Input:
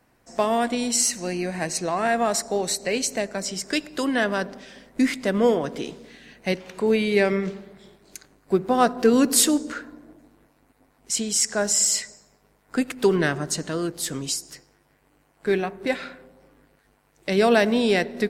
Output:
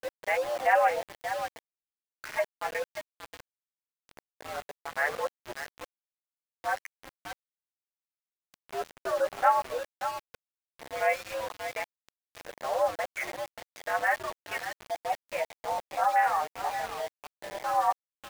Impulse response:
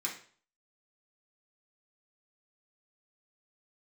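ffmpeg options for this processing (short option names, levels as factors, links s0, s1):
-filter_complex "[0:a]areverse,afwtdn=0.0355,asplit=2[s0][s1];[s1]acompressor=threshold=0.0224:ratio=12,volume=0.75[s2];[s0][s2]amix=inputs=2:normalize=0,flanger=delay=8.8:depth=6.7:regen=14:speed=0.15:shape=triangular,highpass=f=500:t=q:w=0.5412,highpass=f=500:t=q:w=1.307,lowpass=f=2300:t=q:w=0.5176,lowpass=f=2300:t=q:w=0.7071,lowpass=f=2300:t=q:w=1.932,afreqshift=100,aecho=1:1:582:0.316,aeval=exprs='val(0)*gte(abs(val(0)),0.0168)':c=same"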